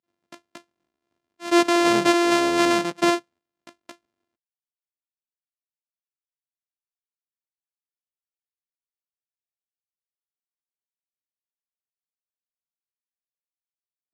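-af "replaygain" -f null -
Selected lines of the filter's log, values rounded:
track_gain = +3.7 dB
track_peak = 0.483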